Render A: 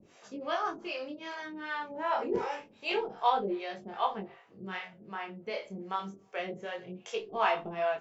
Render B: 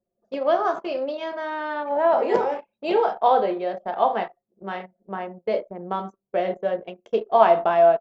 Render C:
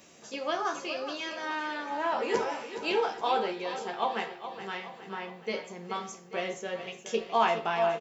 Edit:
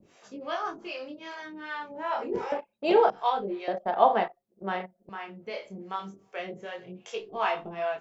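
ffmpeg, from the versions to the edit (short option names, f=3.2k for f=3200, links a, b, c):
-filter_complex "[1:a]asplit=2[a][b];[0:a]asplit=3[c][d][e];[c]atrim=end=2.522[f];[a]atrim=start=2.518:end=3.102[g];[d]atrim=start=3.098:end=3.682[h];[b]atrim=start=3.678:end=5.092[i];[e]atrim=start=5.088[j];[f][g]acrossfade=d=0.004:c1=hsin:c2=hsin[k];[k][h]acrossfade=d=0.004:c1=hsin:c2=hsin[l];[l][i]acrossfade=d=0.004:c1=hsin:c2=hsin[m];[m][j]acrossfade=d=0.004:c1=hsin:c2=hsin"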